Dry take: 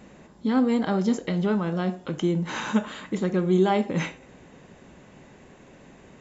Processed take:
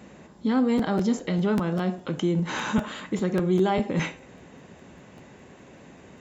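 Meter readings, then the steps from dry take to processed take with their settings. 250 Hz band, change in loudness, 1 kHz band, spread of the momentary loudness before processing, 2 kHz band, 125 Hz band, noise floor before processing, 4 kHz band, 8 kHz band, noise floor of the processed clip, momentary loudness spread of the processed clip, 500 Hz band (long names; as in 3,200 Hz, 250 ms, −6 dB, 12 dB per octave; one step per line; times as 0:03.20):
−0.5 dB, −0.5 dB, −0.5 dB, 8 LU, +0.5 dB, +0.5 dB, −52 dBFS, +0.5 dB, can't be measured, −50 dBFS, 7 LU, −1.0 dB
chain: high-pass filter 53 Hz 24 dB per octave
in parallel at +1 dB: brickwall limiter −20 dBFS, peak gain reduction 10 dB
on the sum: regular buffer underruns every 0.20 s, samples 512, repeat, from 0:00.77
level −5 dB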